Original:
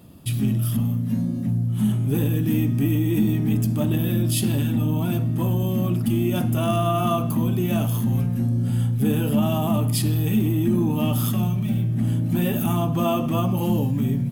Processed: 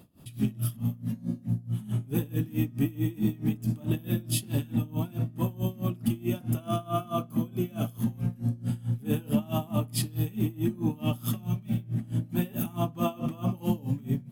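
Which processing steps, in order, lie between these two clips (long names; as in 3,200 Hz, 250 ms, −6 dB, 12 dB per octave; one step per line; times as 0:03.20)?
0:06.60–0:07.99: notch comb filter 920 Hz
tremolo with a sine in dB 4.6 Hz, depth 23 dB
level −2.5 dB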